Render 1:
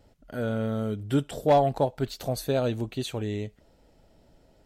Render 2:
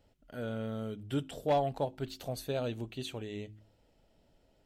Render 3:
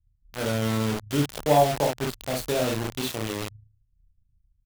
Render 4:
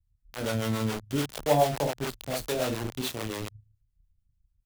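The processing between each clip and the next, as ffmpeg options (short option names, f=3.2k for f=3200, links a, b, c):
-af "equalizer=f=2.9k:w=2.1:g=5,bandreject=f=53:t=h:w=4,bandreject=f=106:t=h:w=4,bandreject=f=159:t=h:w=4,bandreject=f=212:t=h:w=4,bandreject=f=265:t=h:w=4,bandreject=f=318:t=h:w=4,bandreject=f=371:t=h:w=4,volume=-8.5dB"
-filter_complex "[0:a]aecho=1:1:27|55|78:0.668|0.668|0.126,acrossover=split=110[a][b];[a]tremolo=f=27:d=0.571[c];[b]acrusher=bits=5:mix=0:aa=0.000001[d];[c][d]amix=inputs=2:normalize=0,volume=6.5dB"
-filter_complex "[0:a]acrossover=split=410[a][b];[a]aeval=exprs='val(0)*(1-0.7/2+0.7/2*cos(2*PI*7*n/s))':c=same[c];[b]aeval=exprs='val(0)*(1-0.7/2-0.7/2*cos(2*PI*7*n/s))':c=same[d];[c][d]amix=inputs=2:normalize=0"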